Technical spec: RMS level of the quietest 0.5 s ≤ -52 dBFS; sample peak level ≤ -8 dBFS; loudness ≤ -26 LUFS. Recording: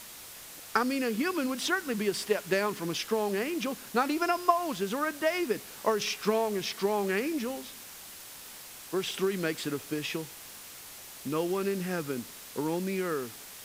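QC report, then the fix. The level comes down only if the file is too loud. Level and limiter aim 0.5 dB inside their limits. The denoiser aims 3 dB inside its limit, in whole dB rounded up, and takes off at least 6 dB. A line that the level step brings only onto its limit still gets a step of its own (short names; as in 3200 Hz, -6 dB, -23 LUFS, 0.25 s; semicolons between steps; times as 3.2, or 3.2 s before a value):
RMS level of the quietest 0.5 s -47 dBFS: fail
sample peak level -9.0 dBFS: OK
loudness -30.5 LUFS: OK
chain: denoiser 8 dB, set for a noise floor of -47 dBFS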